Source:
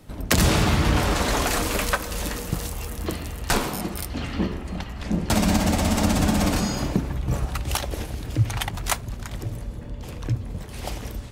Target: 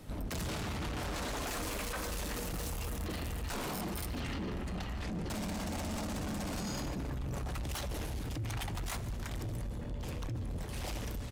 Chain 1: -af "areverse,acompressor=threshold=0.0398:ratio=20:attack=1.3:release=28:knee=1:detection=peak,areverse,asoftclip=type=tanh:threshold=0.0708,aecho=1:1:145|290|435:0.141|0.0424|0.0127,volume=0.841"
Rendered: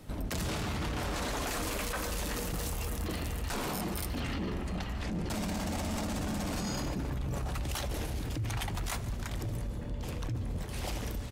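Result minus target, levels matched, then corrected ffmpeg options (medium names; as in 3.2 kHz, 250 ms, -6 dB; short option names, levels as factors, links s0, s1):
saturation: distortion -12 dB
-af "areverse,acompressor=threshold=0.0398:ratio=20:attack=1.3:release=28:knee=1:detection=peak,areverse,asoftclip=type=tanh:threshold=0.0251,aecho=1:1:145|290|435:0.141|0.0424|0.0127,volume=0.841"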